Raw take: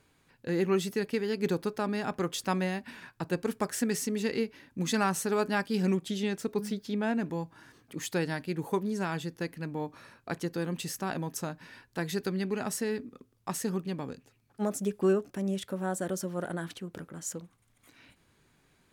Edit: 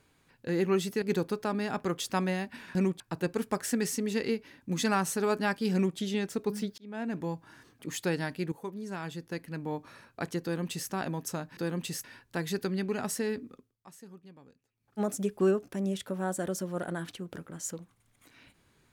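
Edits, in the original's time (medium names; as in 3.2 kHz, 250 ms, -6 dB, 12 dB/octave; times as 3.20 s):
1.02–1.36 s: delete
5.82–6.07 s: copy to 3.09 s
6.87–7.34 s: fade in
8.61–9.81 s: fade in, from -12 dB
10.52–10.99 s: copy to 11.66 s
13.13–14.62 s: dip -18 dB, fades 0.25 s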